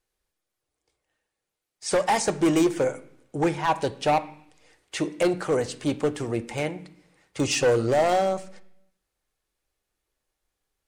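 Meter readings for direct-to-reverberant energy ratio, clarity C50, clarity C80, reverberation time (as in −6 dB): 9.5 dB, 17.0 dB, 19.5 dB, 0.70 s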